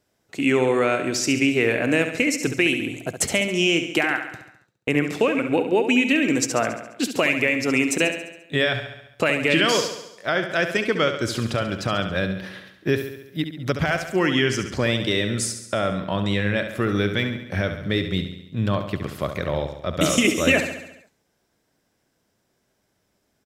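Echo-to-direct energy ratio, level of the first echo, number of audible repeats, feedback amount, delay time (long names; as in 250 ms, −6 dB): −7.0 dB, −9.0 dB, 6, 58%, 69 ms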